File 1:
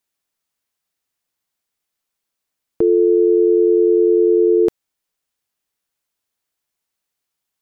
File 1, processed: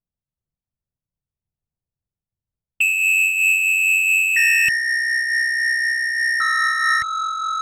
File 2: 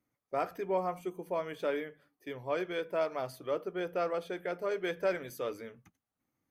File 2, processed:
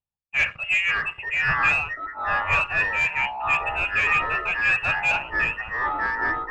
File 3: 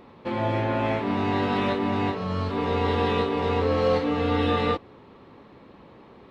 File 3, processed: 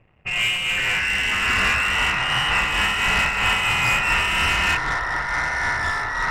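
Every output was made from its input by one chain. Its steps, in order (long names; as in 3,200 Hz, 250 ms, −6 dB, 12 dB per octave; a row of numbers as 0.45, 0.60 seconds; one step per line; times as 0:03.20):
high-pass filter 41 Hz 12 dB per octave
voice inversion scrambler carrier 3,000 Hz
low shelf with overshoot 210 Hz +13.5 dB, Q 1.5
leveller curve on the samples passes 3
downward compressor, threshold −16 dBFS
low-pass that shuts in the quiet parts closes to 590 Hz, open at −16.5 dBFS
delay with pitch and tempo change per echo 396 ms, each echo −6 semitones, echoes 3
amplitude modulation by smooth noise, depth 55%
normalise the peak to −9 dBFS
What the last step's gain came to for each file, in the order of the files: +2.0, +6.5, −2.0 decibels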